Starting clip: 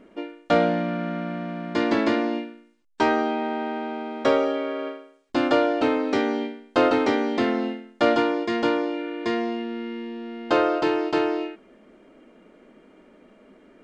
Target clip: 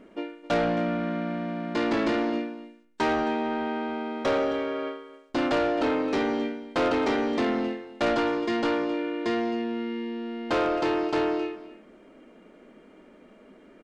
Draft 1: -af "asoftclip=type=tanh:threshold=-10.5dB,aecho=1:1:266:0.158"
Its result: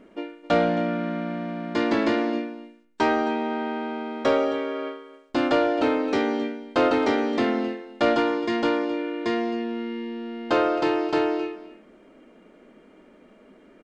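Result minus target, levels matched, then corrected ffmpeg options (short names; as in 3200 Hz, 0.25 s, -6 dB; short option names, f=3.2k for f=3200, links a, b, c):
soft clip: distortion -11 dB
-af "asoftclip=type=tanh:threshold=-20dB,aecho=1:1:266:0.158"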